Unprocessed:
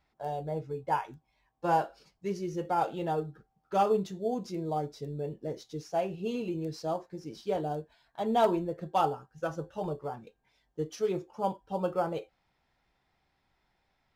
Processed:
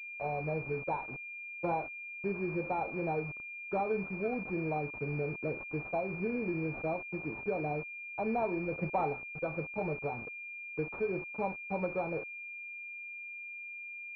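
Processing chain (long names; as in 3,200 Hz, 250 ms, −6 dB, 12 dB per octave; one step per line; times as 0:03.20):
downward compressor 3 to 1, threshold −35 dBFS, peak gain reduction 11.5 dB
0:08.72–0:09.13: leveller curve on the samples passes 1
bit reduction 8 bits
switching amplifier with a slow clock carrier 2,400 Hz
level +3 dB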